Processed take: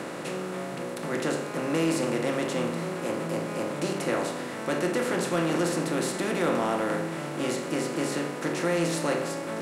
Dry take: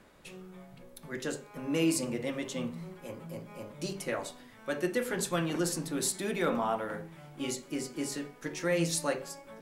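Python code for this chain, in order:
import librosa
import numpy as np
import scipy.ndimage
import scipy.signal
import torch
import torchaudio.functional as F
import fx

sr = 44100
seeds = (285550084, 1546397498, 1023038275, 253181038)

y = fx.bin_compress(x, sr, power=0.4)
y = scipy.signal.sosfilt(scipy.signal.butter(2, 96.0, 'highpass', fs=sr, output='sos'), y)
y = fx.high_shelf(y, sr, hz=4400.0, db=-9.0)
y = 10.0 ** (-13.0 / 20.0) * np.tanh(y / 10.0 ** (-13.0 / 20.0))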